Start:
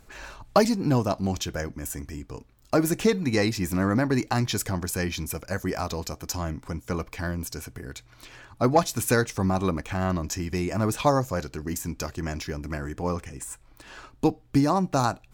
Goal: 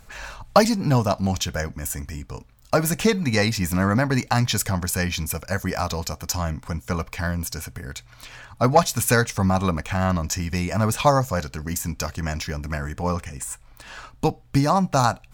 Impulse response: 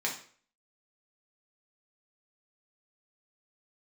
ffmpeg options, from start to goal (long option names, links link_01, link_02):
-af "equalizer=frequency=340:width_type=o:width=0.51:gain=-14,volume=5.5dB"